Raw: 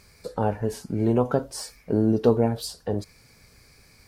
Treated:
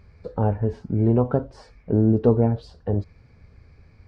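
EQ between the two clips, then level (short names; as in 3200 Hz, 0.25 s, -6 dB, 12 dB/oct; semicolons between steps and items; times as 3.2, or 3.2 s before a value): tape spacing loss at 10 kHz 36 dB; bell 83 Hz +8 dB 0.47 oct; low shelf 150 Hz +5.5 dB; +1.5 dB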